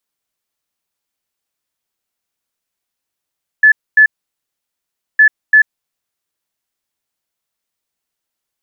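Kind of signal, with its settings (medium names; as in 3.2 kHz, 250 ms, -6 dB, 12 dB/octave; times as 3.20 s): beep pattern sine 1.73 kHz, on 0.09 s, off 0.25 s, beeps 2, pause 1.13 s, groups 2, -3.5 dBFS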